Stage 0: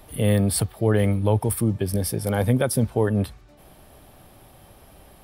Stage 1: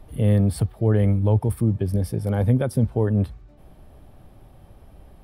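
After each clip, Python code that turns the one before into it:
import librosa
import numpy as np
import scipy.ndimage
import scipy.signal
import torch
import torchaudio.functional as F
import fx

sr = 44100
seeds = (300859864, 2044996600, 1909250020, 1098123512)

y = fx.tilt_eq(x, sr, slope=-2.5)
y = F.gain(torch.from_numpy(y), -5.0).numpy()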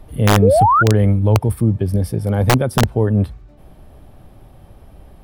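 y = (np.mod(10.0 ** (10.5 / 20.0) * x + 1.0, 2.0) - 1.0) / 10.0 ** (10.5 / 20.0)
y = fx.spec_paint(y, sr, seeds[0], shape='rise', start_s=0.42, length_s=0.41, low_hz=410.0, high_hz=1500.0, level_db=-17.0)
y = F.gain(torch.from_numpy(y), 5.0).numpy()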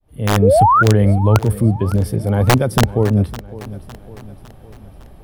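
y = fx.fade_in_head(x, sr, length_s=0.52)
y = fx.echo_feedback(y, sr, ms=557, feedback_pct=50, wet_db=-17.0)
y = F.gain(torch.from_numpy(y), 1.0).numpy()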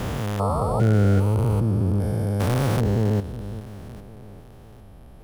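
y = fx.spec_steps(x, sr, hold_ms=400)
y = F.gain(torch.from_numpy(y), -4.0).numpy()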